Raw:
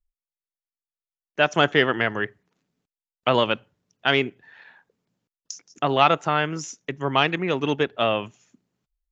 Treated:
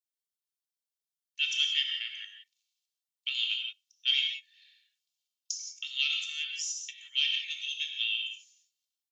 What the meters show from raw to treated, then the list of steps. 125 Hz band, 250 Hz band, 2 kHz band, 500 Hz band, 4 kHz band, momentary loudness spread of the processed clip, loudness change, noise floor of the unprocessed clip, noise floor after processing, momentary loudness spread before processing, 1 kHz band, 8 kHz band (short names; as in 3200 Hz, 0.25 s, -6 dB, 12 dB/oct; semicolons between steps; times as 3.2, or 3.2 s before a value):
under -40 dB, under -40 dB, -10.0 dB, under -40 dB, +1.5 dB, 12 LU, -7.5 dB, under -85 dBFS, under -85 dBFS, 14 LU, under -40 dB, n/a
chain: steep high-pass 2900 Hz 36 dB/oct; comb 2.2 ms, depth 61%; non-linear reverb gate 0.2 s flat, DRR 2 dB; gain -1 dB